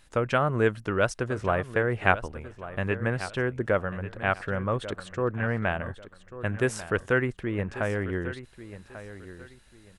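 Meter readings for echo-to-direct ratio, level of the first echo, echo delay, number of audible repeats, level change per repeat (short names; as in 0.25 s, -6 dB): -13.5 dB, -14.0 dB, 1.142 s, 2, -11.5 dB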